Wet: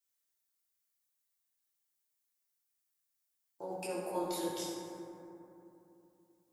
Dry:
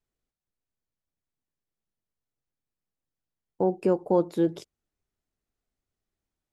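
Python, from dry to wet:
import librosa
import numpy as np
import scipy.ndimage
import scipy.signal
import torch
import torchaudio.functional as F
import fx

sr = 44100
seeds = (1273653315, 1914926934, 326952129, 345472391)

y = np.diff(x, prepend=0.0)
y = fx.level_steps(y, sr, step_db=21)
y = fx.rev_fdn(y, sr, rt60_s=3.0, lf_ratio=1.3, hf_ratio=0.35, size_ms=52.0, drr_db=-9.0)
y = y * librosa.db_to_amplitude(16.0)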